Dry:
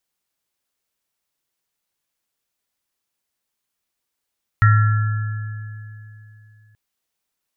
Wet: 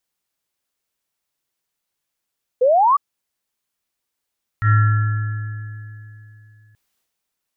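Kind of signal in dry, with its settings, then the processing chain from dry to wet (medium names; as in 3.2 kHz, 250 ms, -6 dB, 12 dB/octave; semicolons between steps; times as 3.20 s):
sine partials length 2.13 s, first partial 107 Hz, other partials 1.36/1.7/1.87 kHz, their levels -7.5/-15.5/-11 dB, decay 3.05 s, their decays 1.79/3.42/0.59 s, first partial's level -9 dB
transient shaper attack -10 dB, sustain +7 dB; painted sound rise, 2.61–2.97 s, 480–1200 Hz -14 dBFS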